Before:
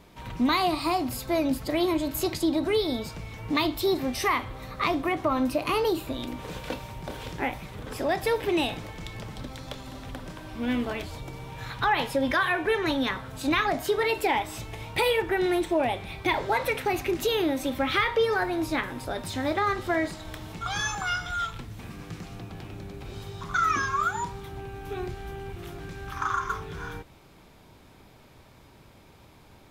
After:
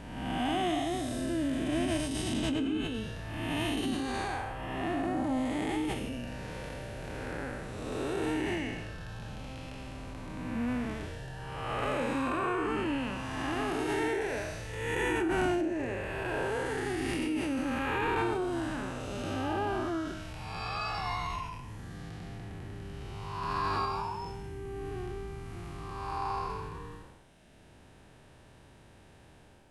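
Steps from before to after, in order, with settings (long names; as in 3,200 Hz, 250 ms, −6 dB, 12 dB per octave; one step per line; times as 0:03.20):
spectrum smeared in time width 428 ms
formants moved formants −5 semitones
reverb reduction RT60 1.2 s
level +3 dB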